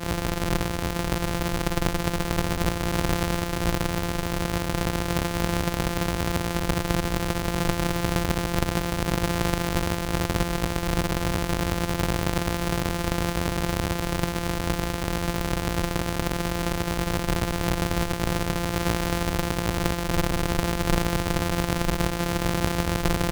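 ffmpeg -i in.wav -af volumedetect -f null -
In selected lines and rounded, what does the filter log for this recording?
mean_volume: -25.4 dB
max_volume: -5.4 dB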